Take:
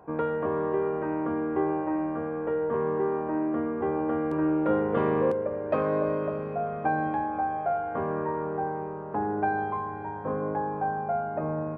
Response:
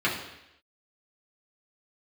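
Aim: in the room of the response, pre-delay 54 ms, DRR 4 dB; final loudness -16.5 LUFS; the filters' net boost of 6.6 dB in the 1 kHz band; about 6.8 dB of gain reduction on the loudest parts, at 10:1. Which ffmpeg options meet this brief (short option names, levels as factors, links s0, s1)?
-filter_complex "[0:a]equalizer=f=1000:t=o:g=9,acompressor=threshold=0.0631:ratio=10,asplit=2[s0][s1];[1:a]atrim=start_sample=2205,adelay=54[s2];[s1][s2]afir=irnorm=-1:irlink=0,volume=0.133[s3];[s0][s3]amix=inputs=2:normalize=0,volume=3.98"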